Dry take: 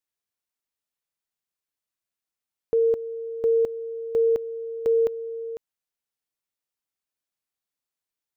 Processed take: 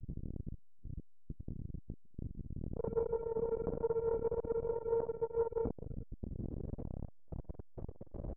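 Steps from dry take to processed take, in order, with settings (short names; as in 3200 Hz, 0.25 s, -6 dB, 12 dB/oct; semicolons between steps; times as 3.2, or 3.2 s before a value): low shelf 460 Hz +11.5 dB; comb 3.8 ms, depth 77%; limiter -24 dBFS, peak gain reduction 15 dB; transient shaper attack -1 dB, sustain -6 dB; added noise brown -53 dBFS; grains, grains 20/s, pitch spread up and down by 0 st; overloaded stage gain 33.5 dB; low-pass sweep 160 Hz -> 550 Hz, 6.09–6.76; on a send: reverse bouncing-ball echo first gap 50 ms, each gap 1.3×, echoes 5; on the sum: core saturation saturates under 430 Hz; gain +18 dB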